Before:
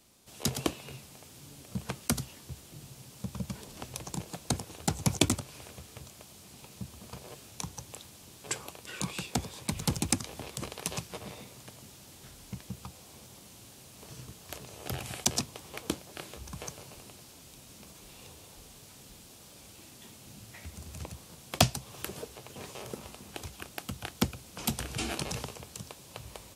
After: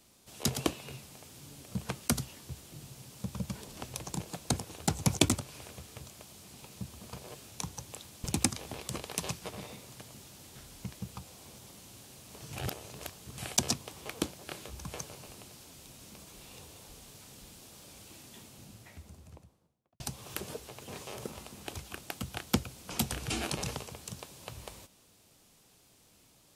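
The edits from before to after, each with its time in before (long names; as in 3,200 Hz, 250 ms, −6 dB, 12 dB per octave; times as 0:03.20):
0:08.24–0:09.92: remove
0:14.21–0:15.06: reverse
0:19.92–0:21.68: fade out and dull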